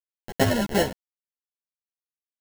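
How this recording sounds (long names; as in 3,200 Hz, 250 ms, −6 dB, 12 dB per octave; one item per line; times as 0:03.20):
aliases and images of a low sample rate 1,200 Hz, jitter 0%
chopped level 1.5 Hz, depth 65%, duty 65%
a quantiser's noise floor 6 bits, dither none
a shimmering, thickened sound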